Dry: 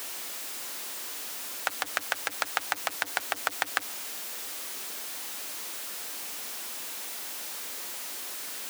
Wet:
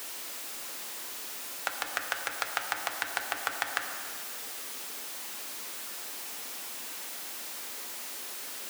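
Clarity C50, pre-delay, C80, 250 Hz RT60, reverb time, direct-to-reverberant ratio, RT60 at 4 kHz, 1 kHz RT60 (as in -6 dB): 6.0 dB, 7 ms, 7.0 dB, 2.8 s, 2.2 s, 4.0 dB, 1.3 s, 2.3 s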